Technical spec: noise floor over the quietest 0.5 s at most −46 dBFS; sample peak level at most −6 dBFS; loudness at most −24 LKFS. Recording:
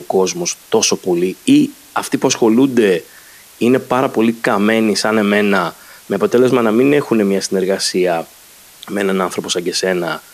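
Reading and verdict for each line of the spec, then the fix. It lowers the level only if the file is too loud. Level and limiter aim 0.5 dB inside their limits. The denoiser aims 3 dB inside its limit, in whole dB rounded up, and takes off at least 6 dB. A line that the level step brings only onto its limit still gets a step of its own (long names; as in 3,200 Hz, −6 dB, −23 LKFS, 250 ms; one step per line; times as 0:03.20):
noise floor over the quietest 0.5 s −42 dBFS: out of spec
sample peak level −2.0 dBFS: out of spec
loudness −15.0 LKFS: out of spec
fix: level −9.5 dB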